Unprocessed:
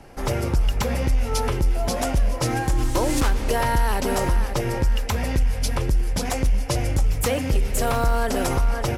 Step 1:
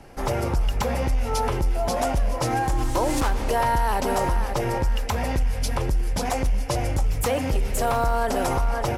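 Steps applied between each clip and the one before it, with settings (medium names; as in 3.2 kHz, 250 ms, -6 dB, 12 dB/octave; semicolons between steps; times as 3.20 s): dynamic bell 820 Hz, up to +7 dB, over -39 dBFS, Q 1.1; in parallel at +2.5 dB: peak limiter -17 dBFS, peak gain reduction 9 dB; on the sum: trim -8 dB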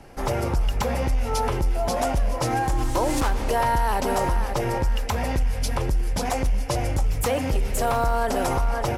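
no audible change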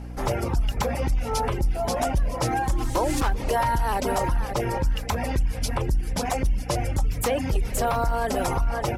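reverb removal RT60 0.65 s; hum 60 Hz, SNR 12 dB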